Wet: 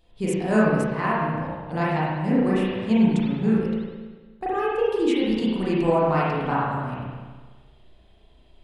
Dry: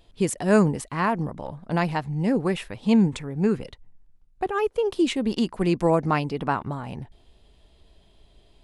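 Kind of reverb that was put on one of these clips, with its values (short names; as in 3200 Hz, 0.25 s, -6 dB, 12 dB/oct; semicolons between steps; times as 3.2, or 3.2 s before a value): spring tank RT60 1.4 s, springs 32/36 ms, chirp 70 ms, DRR -8 dB; gain -7 dB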